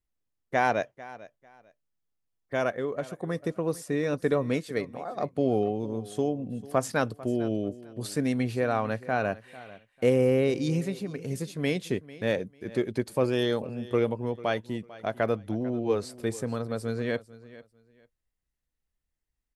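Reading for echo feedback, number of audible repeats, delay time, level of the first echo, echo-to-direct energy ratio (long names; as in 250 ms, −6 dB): 22%, 2, 446 ms, −18.5 dB, −18.5 dB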